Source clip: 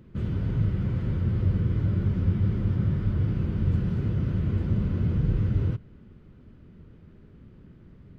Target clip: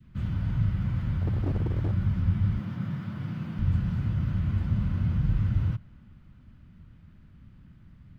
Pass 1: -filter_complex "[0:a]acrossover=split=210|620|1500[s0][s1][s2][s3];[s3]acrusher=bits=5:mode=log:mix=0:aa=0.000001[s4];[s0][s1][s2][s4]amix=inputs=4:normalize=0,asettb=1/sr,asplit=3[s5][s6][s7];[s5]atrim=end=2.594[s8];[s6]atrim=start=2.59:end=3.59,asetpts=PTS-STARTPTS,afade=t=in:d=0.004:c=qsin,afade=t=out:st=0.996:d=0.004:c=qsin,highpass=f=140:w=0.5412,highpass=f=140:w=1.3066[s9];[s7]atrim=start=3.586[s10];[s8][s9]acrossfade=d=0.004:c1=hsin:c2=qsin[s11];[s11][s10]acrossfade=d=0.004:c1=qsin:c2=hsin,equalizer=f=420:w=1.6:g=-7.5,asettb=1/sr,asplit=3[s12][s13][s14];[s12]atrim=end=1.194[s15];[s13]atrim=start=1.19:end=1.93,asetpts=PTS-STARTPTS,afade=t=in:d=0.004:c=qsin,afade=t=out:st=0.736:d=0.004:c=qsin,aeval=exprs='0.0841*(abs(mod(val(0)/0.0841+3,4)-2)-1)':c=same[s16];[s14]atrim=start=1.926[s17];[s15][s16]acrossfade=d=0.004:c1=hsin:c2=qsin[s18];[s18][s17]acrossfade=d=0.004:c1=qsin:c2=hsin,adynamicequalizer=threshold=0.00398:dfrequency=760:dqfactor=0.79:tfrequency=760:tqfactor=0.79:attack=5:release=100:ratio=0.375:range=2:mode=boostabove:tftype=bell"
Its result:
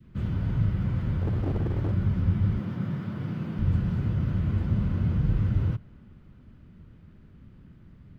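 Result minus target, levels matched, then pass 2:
500 Hz band +4.0 dB
-filter_complex "[0:a]acrossover=split=210|620|1500[s0][s1][s2][s3];[s3]acrusher=bits=5:mode=log:mix=0:aa=0.000001[s4];[s0][s1][s2][s4]amix=inputs=4:normalize=0,asettb=1/sr,asplit=3[s5][s6][s7];[s5]atrim=end=2.594[s8];[s6]atrim=start=2.59:end=3.59,asetpts=PTS-STARTPTS,afade=t=in:d=0.004:c=qsin,afade=t=out:st=0.996:d=0.004:c=qsin,highpass=f=140:w=0.5412,highpass=f=140:w=1.3066[s9];[s7]atrim=start=3.586[s10];[s8][s9]acrossfade=d=0.004:c1=hsin:c2=qsin[s11];[s11][s10]acrossfade=d=0.004:c1=qsin:c2=hsin,equalizer=f=420:w=1.6:g=-19,asettb=1/sr,asplit=3[s12][s13][s14];[s12]atrim=end=1.194[s15];[s13]atrim=start=1.19:end=1.93,asetpts=PTS-STARTPTS,afade=t=in:d=0.004:c=qsin,afade=t=out:st=0.736:d=0.004:c=qsin,aeval=exprs='0.0841*(abs(mod(val(0)/0.0841+3,4)-2)-1)':c=same[s16];[s14]atrim=start=1.926[s17];[s15][s16]acrossfade=d=0.004:c1=hsin:c2=qsin[s18];[s18][s17]acrossfade=d=0.004:c1=qsin:c2=hsin,adynamicequalizer=threshold=0.00398:dfrequency=760:dqfactor=0.79:tfrequency=760:tqfactor=0.79:attack=5:release=100:ratio=0.375:range=2:mode=boostabove:tftype=bell"

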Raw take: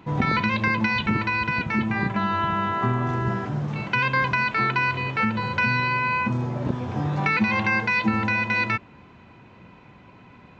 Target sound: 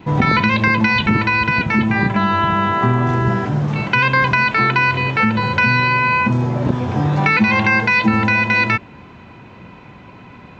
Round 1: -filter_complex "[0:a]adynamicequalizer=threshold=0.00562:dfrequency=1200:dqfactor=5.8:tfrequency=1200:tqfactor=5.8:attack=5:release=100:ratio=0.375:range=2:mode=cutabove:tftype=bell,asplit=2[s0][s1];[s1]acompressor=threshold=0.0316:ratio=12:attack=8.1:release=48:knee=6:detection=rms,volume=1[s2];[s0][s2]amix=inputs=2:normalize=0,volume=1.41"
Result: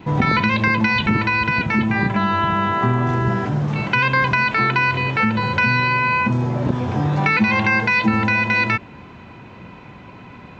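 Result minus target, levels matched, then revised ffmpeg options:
compression: peak gain reduction +9 dB
-filter_complex "[0:a]adynamicequalizer=threshold=0.00562:dfrequency=1200:dqfactor=5.8:tfrequency=1200:tqfactor=5.8:attack=5:release=100:ratio=0.375:range=2:mode=cutabove:tftype=bell,asplit=2[s0][s1];[s1]acompressor=threshold=0.1:ratio=12:attack=8.1:release=48:knee=6:detection=rms,volume=1[s2];[s0][s2]amix=inputs=2:normalize=0,volume=1.41"

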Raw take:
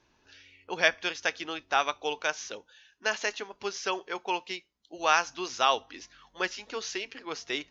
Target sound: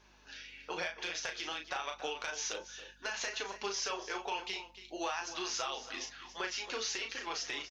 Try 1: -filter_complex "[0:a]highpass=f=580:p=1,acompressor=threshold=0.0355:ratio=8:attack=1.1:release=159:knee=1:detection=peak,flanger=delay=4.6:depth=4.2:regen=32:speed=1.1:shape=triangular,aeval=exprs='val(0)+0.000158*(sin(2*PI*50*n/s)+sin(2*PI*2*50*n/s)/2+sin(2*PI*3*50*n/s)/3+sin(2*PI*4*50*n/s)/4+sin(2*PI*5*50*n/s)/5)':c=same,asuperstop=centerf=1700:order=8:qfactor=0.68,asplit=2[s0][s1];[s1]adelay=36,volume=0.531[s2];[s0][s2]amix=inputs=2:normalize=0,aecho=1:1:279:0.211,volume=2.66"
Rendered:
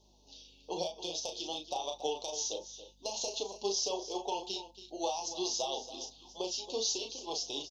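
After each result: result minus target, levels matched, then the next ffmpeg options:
2 kHz band -18.0 dB; compression: peak gain reduction -6.5 dB
-filter_complex "[0:a]highpass=f=580:p=1,acompressor=threshold=0.0355:ratio=8:attack=1.1:release=159:knee=1:detection=peak,flanger=delay=4.6:depth=4.2:regen=32:speed=1.1:shape=triangular,aeval=exprs='val(0)+0.000158*(sin(2*PI*50*n/s)+sin(2*PI*2*50*n/s)/2+sin(2*PI*3*50*n/s)/3+sin(2*PI*4*50*n/s)/4+sin(2*PI*5*50*n/s)/5)':c=same,asplit=2[s0][s1];[s1]adelay=36,volume=0.531[s2];[s0][s2]amix=inputs=2:normalize=0,aecho=1:1:279:0.211,volume=2.66"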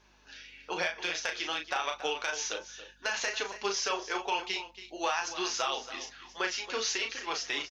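compression: peak gain reduction -6.5 dB
-filter_complex "[0:a]highpass=f=580:p=1,acompressor=threshold=0.015:ratio=8:attack=1.1:release=159:knee=1:detection=peak,flanger=delay=4.6:depth=4.2:regen=32:speed=1.1:shape=triangular,aeval=exprs='val(0)+0.000158*(sin(2*PI*50*n/s)+sin(2*PI*2*50*n/s)/2+sin(2*PI*3*50*n/s)/3+sin(2*PI*4*50*n/s)/4+sin(2*PI*5*50*n/s)/5)':c=same,asplit=2[s0][s1];[s1]adelay=36,volume=0.531[s2];[s0][s2]amix=inputs=2:normalize=0,aecho=1:1:279:0.211,volume=2.66"

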